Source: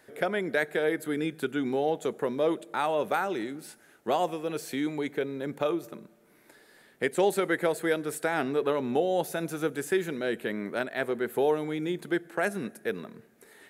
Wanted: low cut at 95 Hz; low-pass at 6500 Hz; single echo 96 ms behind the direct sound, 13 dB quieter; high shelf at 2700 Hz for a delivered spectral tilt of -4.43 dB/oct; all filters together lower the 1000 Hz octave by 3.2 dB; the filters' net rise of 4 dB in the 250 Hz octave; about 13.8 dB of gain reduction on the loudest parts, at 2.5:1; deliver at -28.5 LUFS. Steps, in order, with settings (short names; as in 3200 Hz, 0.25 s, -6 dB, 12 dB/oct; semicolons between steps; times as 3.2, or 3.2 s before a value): HPF 95 Hz; LPF 6500 Hz; bell 250 Hz +6 dB; bell 1000 Hz -6 dB; high shelf 2700 Hz +4.5 dB; compressor 2.5:1, threshold -42 dBFS; echo 96 ms -13 dB; gain +12 dB